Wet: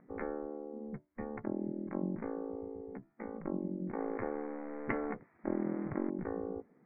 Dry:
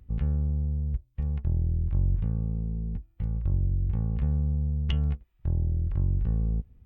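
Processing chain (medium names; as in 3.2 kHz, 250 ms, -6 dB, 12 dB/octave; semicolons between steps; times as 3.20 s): 3.98–6.10 s: companding laws mixed up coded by mu; spectral gate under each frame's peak -20 dB weak; steep low-pass 2.2 kHz 96 dB/octave; trim +9.5 dB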